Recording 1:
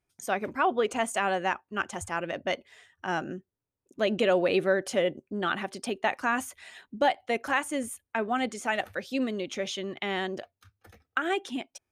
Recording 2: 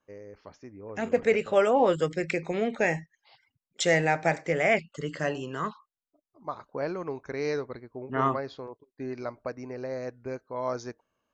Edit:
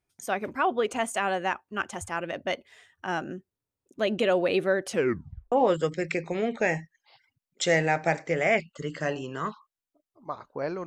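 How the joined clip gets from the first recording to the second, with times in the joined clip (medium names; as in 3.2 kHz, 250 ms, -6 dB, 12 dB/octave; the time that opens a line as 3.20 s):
recording 1
4.89 s: tape stop 0.63 s
5.52 s: go over to recording 2 from 1.71 s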